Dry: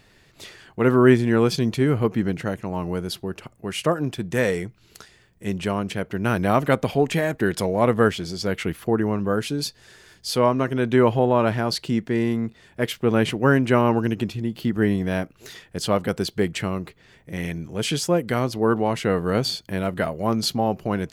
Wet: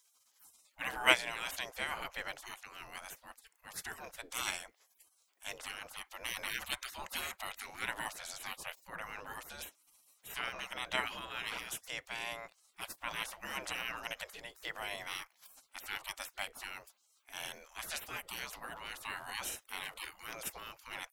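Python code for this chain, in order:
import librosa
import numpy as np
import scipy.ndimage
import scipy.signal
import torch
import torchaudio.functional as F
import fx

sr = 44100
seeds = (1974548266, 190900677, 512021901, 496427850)

y = fx.spec_gate(x, sr, threshold_db=-25, keep='weak')
y = fx.upward_expand(y, sr, threshold_db=-37.0, expansion=2.5)
y = y * librosa.db_to_amplitude(10.0)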